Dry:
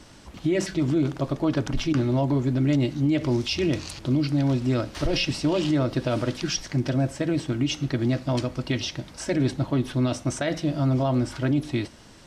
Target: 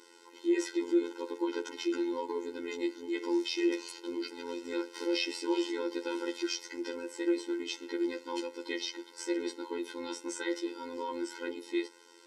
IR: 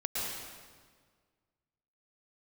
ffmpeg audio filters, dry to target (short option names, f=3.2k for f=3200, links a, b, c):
-af "afftfilt=real='hypot(re,im)*cos(PI*b)':imag='0':win_size=2048:overlap=0.75,afftfilt=real='re*eq(mod(floor(b*sr/1024/270),2),1)':imag='im*eq(mod(floor(b*sr/1024/270),2),1)':win_size=1024:overlap=0.75"